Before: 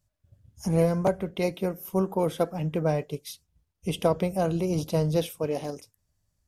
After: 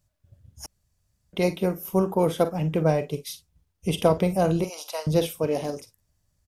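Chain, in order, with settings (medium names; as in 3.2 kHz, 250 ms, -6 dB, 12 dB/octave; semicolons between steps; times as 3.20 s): 4.64–5.07 s: high-pass 720 Hz 24 dB/octave; early reflections 44 ms -13.5 dB, 56 ms -17.5 dB; 0.66–1.33 s: room tone; trim +3.5 dB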